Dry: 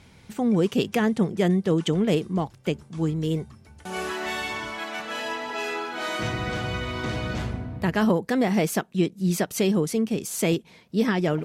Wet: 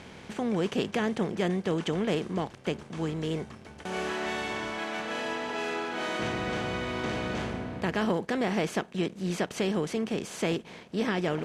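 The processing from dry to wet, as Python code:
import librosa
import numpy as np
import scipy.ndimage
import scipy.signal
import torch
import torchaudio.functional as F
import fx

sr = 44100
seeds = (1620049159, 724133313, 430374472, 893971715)

p1 = fx.bin_compress(x, sr, power=0.6)
p2 = fx.low_shelf(p1, sr, hz=340.0, db=-5.0)
p3 = np.where(np.abs(p2) >= 10.0 ** (-36.0 / 20.0), p2, 0.0)
p4 = p2 + F.gain(torch.from_numpy(p3), -8.0).numpy()
p5 = fx.air_absorb(p4, sr, metres=71.0)
y = F.gain(torch.from_numpy(p5), -9.0).numpy()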